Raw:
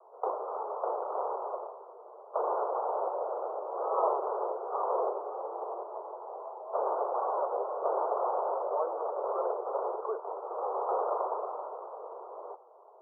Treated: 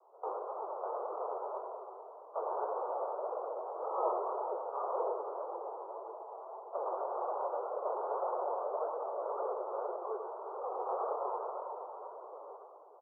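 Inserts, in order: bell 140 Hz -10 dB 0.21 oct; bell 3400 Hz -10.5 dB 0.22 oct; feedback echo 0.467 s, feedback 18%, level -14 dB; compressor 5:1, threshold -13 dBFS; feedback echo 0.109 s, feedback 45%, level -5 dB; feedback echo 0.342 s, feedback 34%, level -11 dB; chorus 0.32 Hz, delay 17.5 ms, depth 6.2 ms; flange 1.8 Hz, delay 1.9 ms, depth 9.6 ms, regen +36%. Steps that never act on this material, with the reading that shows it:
bell 140 Hz: input band starts at 300 Hz; bell 3400 Hz: input band ends at 1500 Hz; compressor, threshold -13 dBFS: input peak -16.0 dBFS

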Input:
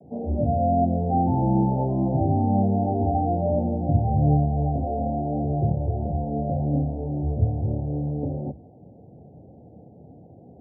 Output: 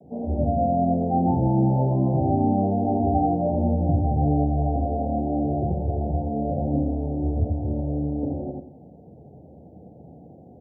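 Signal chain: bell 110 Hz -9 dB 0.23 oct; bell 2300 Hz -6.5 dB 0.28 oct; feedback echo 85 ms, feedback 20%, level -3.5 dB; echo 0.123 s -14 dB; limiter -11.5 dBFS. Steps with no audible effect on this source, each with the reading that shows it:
bell 2300 Hz: input band ends at 810 Hz

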